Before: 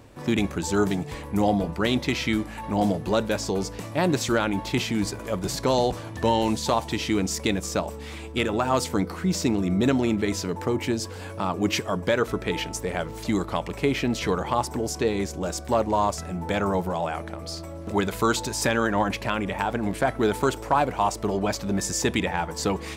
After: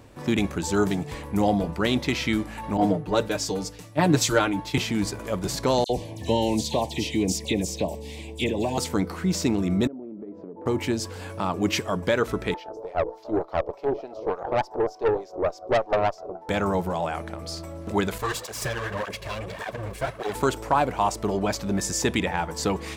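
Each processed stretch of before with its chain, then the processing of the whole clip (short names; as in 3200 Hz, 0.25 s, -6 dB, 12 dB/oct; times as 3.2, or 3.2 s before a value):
2.77–4.78 comb 6.6 ms, depth 69% + three-band expander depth 100%
5.84–8.78 Butterworth band-stop 1300 Hz, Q 0.89 + bell 1100 Hz +13.5 dB 0.25 oct + dispersion lows, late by 56 ms, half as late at 3000 Hz
9.87–10.66 Butterworth band-pass 370 Hz, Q 0.86 + compressor 12:1, threshold -34 dBFS
12.54–16.49 EQ curve 220 Hz 0 dB, 370 Hz +12 dB, 700 Hz +15 dB, 1700 Hz -15 dB, 5200 Hz +9 dB, 9000 Hz -4 dB, 13000 Hz +10 dB + LFO band-pass sine 3.4 Hz 390–1800 Hz + tube stage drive 17 dB, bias 0.7
18.18–20.35 minimum comb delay 1.8 ms + tape flanging out of phase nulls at 1.7 Hz, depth 7.3 ms
whole clip: dry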